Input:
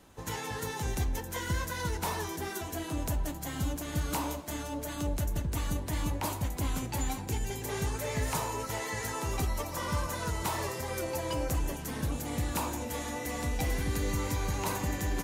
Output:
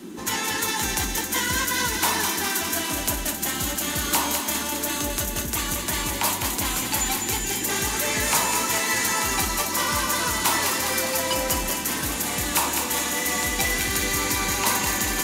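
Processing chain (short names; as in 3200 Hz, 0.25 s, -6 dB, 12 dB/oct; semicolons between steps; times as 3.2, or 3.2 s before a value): tilt shelf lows -8.5 dB, about 640 Hz; band noise 180–370 Hz -43 dBFS; on a send: thinning echo 0.205 s, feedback 68%, high-pass 940 Hz, level -4.5 dB; on the sum: gain +6 dB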